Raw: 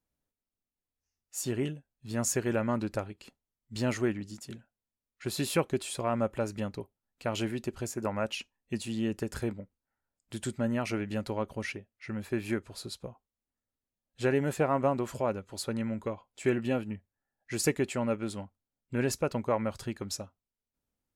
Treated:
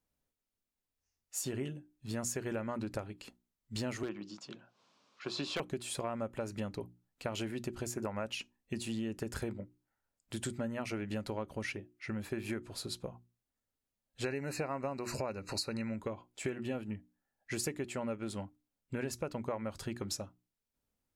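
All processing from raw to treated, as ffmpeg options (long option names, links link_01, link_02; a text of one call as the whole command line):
ffmpeg -i in.wav -filter_complex "[0:a]asettb=1/sr,asplit=3[link_01][link_02][link_03];[link_01]atrim=end=4.034[link_04];[link_02]atrim=start=4.03:end=5.6,asetpts=PTS-STARTPTS,afade=type=in:duration=0.004:curve=qsin,afade=type=out:start_time=1.566:duration=0.004:curve=qsin,highpass=frequency=170:width=0.5412,highpass=frequency=170:width=1.3066,equalizer=frequency=230:width_type=q:width=4:gain=-9,equalizer=frequency=410:width_type=q:width=4:gain=-4,equalizer=frequency=1100:width_type=q:width=4:gain=8,equalizer=frequency=1900:width_type=q:width=4:gain=-8,lowpass=frequency=5500:width=0.5412,lowpass=frequency=5500:width=1.3066,acompressor=mode=upward:threshold=-48dB:ratio=2.5:attack=3.2:release=140:knee=2.83:detection=peak,aeval=exprs='0.075*(abs(mod(val(0)/0.075+3,4)-2)-1)':channel_layout=same[link_05];[link_03]atrim=start=5.596[link_06];[link_04][link_05]acrossfade=duration=0.004:curve1=hsin:curve2=qsin[link_07];[link_07][link_06]acrossfade=duration=0.004:curve1=qsin:curve2=hsin,asettb=1/sr,asplit=3[link_08][link_09][link_10];[link_08]atrim=end=14.244[link_11];[link_09]atrim=start=14.24:end=15.96,asetpts=PTS-STARTPTS,afade=type=in:duration=0.004:curve=qsin,afade=type=out:start_time=1.716:duration=0.004:curve=qsin,equalizer=frequency=3700:width_type=o:width=1.3:gain=12,acompressor=mode=upward:threshold=-29dB:ratio=2.5:attack=3.2:release=140:knee=2.83:detection=peak,asuperstop=centerf=3300:order=8:qfactor=2.8[link_12];[link_10]atrim=start=15.956[link_13];[link_11][link_12]acrossfade=duration=0.004:curve1=hsin:curve2=qsin[link_14];[link_14][link_13]acrossfade=duration=0.004:curve1=qsin:curve2=hsin,bandreject=frequency=60:width_type=h:width=6,bandreject=frequency=120:width_type=h:width=6,bandreject=frequency=180:width_type=h:width=6,bandreject=frequency=240:width_type=h:width=6,bandreject=frequency=300:width_type=h:width=6,bandreject=frequency=360:width_type=h:width=6,acompressor=threshold=-35dB:ratio=6,volume=1dB" out.wav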